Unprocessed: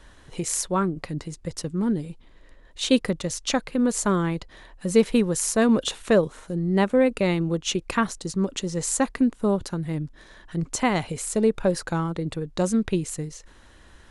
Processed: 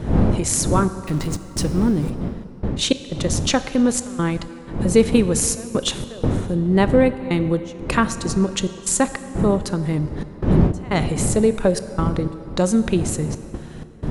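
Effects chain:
0:01.03–0:02.10: converter with a step at zero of −37.5 dBFS
wind on the microphone 220 Hz −29 dBFS
in parallel at −2 dB: downward compressor, threshold −26 dBFS, peak gain reduction 13.5 dB
on the sum: gate pattern "xxxxxxxxx..xxx.." 154 BPM −24 dB
on a send at −12 dB: convolution reverb RT60 3.2 s, pre-delay 18 ms
on the sum: level +2 dB

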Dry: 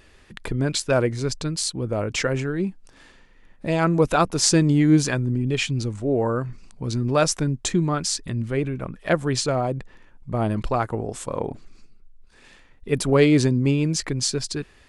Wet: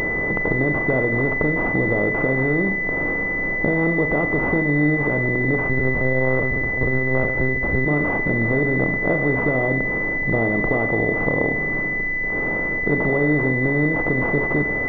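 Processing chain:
compressor on every frequency bin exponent 0.4
downward compressor, threshold −17 dBFS, peak gain reduction 8.5 dB
four-comb reverb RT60 0.65 s, combs from 27 ms, DRR 6.5 dB
0:05.69–0:07.86: one-pitch LPC vocoder at 8 kHz 130 Hz
switching amplifier with a slow clock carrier 2,000 Hz

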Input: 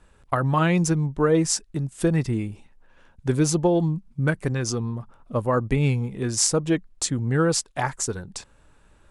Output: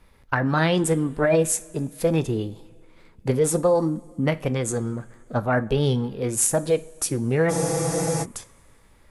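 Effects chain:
formants moved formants +5 semitones
coupled-rooms reverb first 0.33 s, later 2.5 s, from −19 dB, DRR 12.5 dB
frozen spectrum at 0:07.52, 0.71 s

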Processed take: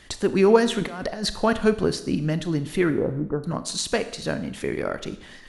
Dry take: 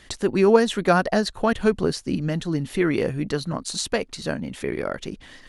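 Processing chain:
0:00.79–0:01.36: compressor whose output falls as the input rises −30 dBFS, ratio −1
0:02.90–0:03.44: Chebyshev low-pass filter 1,400 Hz, order 5
four-comb reverb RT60 0.81 s, combs from 26 ms, DRR 11.5 dB

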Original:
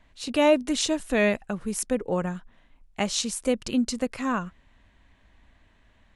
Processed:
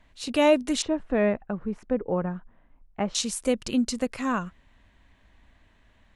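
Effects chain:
0:00.82–0:03.15: low-pass filter 1,400 Hz 12 dB per octave

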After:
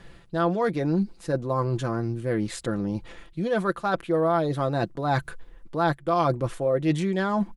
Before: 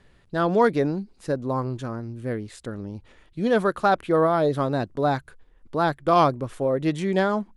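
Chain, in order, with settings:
reversed playback
downward compressor 6 to 1, threshold −31 dBFS, peak gain reduction 16.5 dB
reversed playback
comb filter 5.9 ms, depth 51%
level +8 dB

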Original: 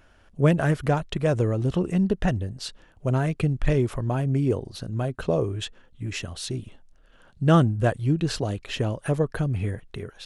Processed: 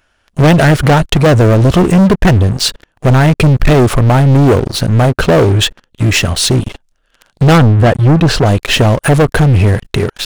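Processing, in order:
leveller curve on the samples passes 5
0:07.58–0:08.46: high-shelf EQ 4,800 Hz −11 dB
one half of a high-frequency compander encoder only
level +4 dB

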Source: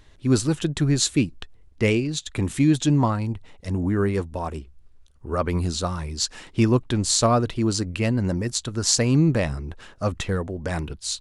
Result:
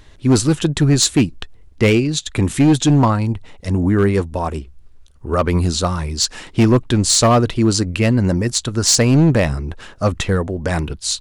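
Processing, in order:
hard clipping −15 dBFS, distortion −16 dB
level +7.5 dB

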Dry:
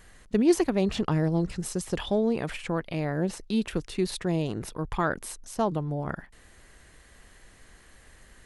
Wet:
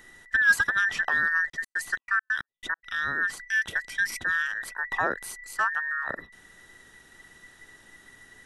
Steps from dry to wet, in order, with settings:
frequency inversion band by band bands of 2,000 Hz
0:01.48–0:02.83: gate pattern "x.x.xx.x.x.." 137 BPM −60 dB

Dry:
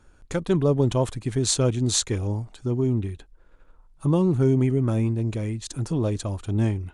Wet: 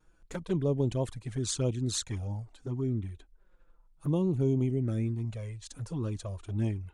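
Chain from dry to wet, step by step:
0:05.25–0:05.89: parametric band 320 Hz −11 dB 0.52 octaves
flanger swept by the level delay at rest 6.5 ms, full sweep at −16.5 dBFS
pitch vibrato 1.2 Hz 28 cents
level −7 dB

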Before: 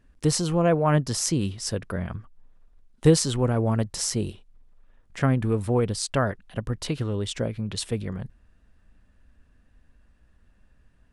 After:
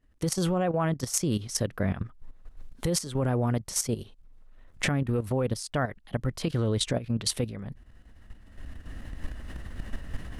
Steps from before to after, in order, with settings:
camcorder AGC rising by 13 dB per second
speed change +7%
output level in coarse steps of 12 dB
level −1.5 dB

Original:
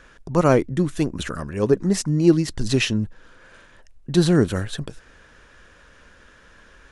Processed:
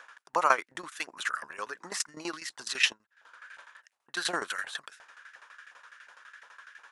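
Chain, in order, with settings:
0:02.92–0:04.14: downward compressor 12 to 1, threshold −36 dBFS, peak gain reduction 18.5 dB
auto-filter high-pass saw up 2.8 Hz 800–1,800 Hz
shaped tremolo saw down 12 Hz, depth 85%

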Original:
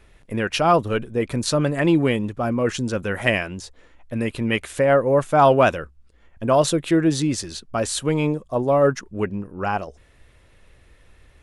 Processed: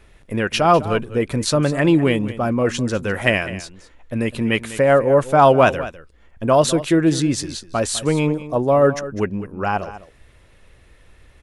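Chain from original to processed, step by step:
single-tap delay 202 ms −15 dB
level +2.5 dB

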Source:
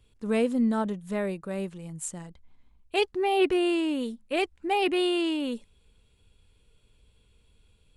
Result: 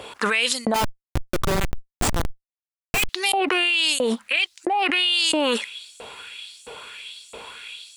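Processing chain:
spectral tilt −3 dB per octave
auto-filter high-pass saw up 1.5 Hz 610–7,600 Hz
0:00.74–0:03.09: comparator with hysteresis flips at −40 dBFS
envelope flattener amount 100%
level −5 dB

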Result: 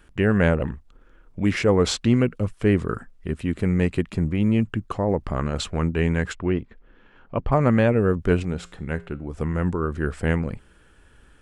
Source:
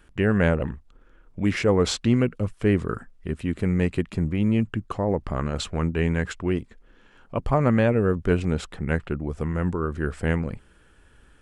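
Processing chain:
0:06.35–0:07.52: low-pass filter 3,000 Hz 12 dB per octave
0:08.43–0:09.34: tuned comb filter 58 Hz, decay 0.44 s, harmonics odd, mix 50%
level +1.5 dB

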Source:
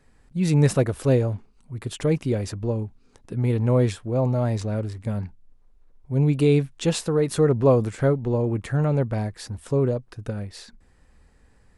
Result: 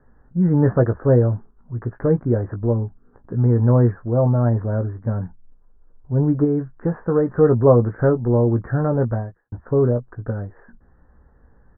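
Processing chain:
0:09.11–0:09.52: fade out quadratic
Butterworth low-pass 1,700 Hz 72 dB per octave
double-tracking delay 17 ms −7.5 dB
0:06.44–0:06.97: downward compressor, threshold −20 dBFS, peak gain reduction 5 dB
level +3.5 dB

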